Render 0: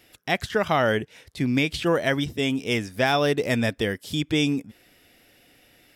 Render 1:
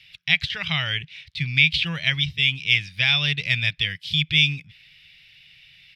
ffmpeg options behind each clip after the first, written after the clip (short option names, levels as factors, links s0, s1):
-af "firequalizer=gain_entry='entry(110,0);entry(160,5);entry(220,-22);entry(430,-23);entry(950,-13);entry(1500,-6);entry(2300,11);entry(3900,10);entry(7000,-11);entry(12000,-16)':delay=0.05:min_phase=1"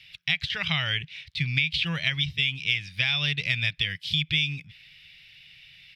-af "acompressor=threshold=0.0891:ratio=6"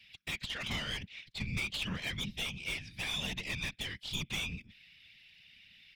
-af "aeval=exprs='(tanh(17.8*val(0)+0.45)-tanh(0.45))/17.8':c=same,afftfilt=real='hypot(re,im)*cos(2*PI*random(0))':imag='hypot(re,im)*sin(2*PI*random(1))':win_size=512:overlap=0.75"